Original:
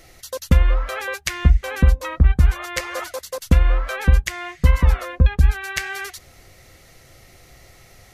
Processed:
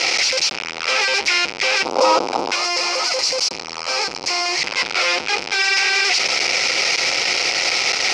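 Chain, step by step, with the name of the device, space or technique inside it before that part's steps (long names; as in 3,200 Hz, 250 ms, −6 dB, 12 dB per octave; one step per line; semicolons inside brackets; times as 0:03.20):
home computer beeper (sign of each sample alone; loudspeaker in its box 610–5,500 Hz, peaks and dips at 640 Hz −6 dB, 1,100 Hz −8 dB, 1,700 Hz −9 dB, 2,400 Hz +7 dB, 3,500 Hz −4 dB, 5,200 Hz +8 dB)
0:01.85–0:02.52: drawn EQ curve 140 Hz 0 dB, 270 Hz +10 dB, 1,100 Hz +11 dB, 1,800 Hz −9 dB, 5,200 Hz 0 dB
0:02.55–0:04.62: gain on a spectral selection 1,300–4,000 Hz −7 dB
level +3.5 dB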